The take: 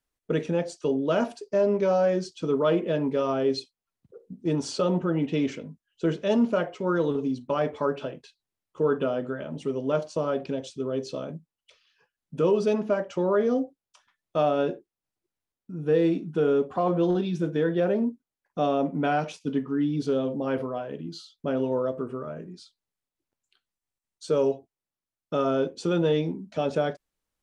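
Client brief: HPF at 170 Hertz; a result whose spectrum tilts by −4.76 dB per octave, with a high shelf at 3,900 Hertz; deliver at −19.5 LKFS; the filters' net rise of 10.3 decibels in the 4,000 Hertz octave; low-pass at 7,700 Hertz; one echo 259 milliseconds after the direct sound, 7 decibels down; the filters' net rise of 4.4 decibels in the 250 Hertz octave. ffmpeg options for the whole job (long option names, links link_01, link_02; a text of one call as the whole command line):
ffmpeg -i in.wav -af "highpass=170,lowpass=7700,equalizer=frequency=250:width_type=o:gain=6.5,highshelf=frequency=3900:gain=7.5,equalizer=frequency=4000:width_type=o:gain=8.5,aecho=1:1:259:0.447,volume=4dB" out.wav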